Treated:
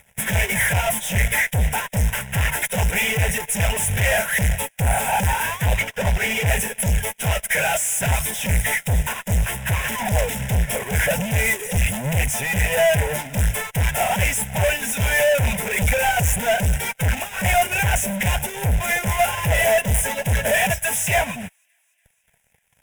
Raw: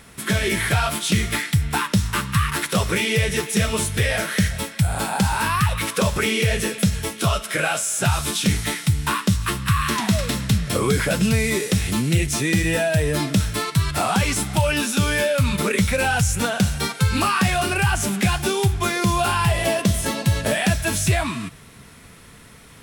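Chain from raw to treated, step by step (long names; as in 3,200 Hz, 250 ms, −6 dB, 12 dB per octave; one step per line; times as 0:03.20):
0:05.76–0:06.47: variable-slope delta modulation 32 kbit/s
reverb reduction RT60 1.8 s
0:20.70–0:21.18: high-pass filter 400 Hz 6 dB per octave
fuzz pedal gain 42 dB, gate −45 dBFS
phaser with its sweep stopped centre 1,200 Hz, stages 6
delay with a high-pass on its return 288 ms, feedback 76%, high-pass 1,700 Hz, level −18 dB
expander for the loud parts 2.5 to 1, over −32 dBFS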